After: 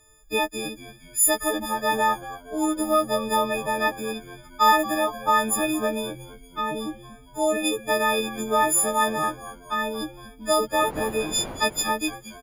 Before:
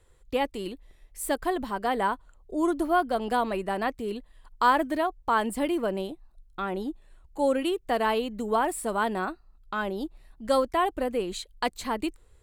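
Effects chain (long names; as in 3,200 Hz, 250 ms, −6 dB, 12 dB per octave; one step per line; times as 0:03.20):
every partial snapped to a pitch grid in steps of 6 semitones
0:10.69–0:11.82: wind on the microphone 630 Hz −32 dBFS
echo with shifted repeats 231 ms, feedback 48%, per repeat −90 Hz, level −15.5 dB
level +1 dB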